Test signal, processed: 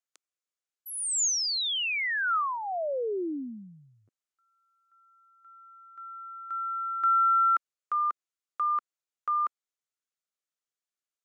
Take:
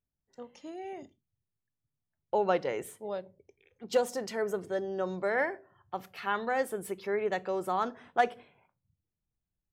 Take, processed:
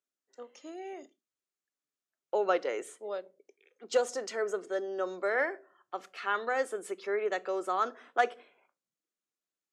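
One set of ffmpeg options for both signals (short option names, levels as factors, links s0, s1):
-af "highpass=f=300:w=0.5412,highpass=f=300:w=1.3066,equalizer=f=880:t=q:w=4:g=-6,equalizer=f=1300:t=q:w=4:g=5,equalizer=f=6800:t=q:w=4:g=5,lowpass=f=9400:w=0.5412,lowpass=f=9400:w=1.3066"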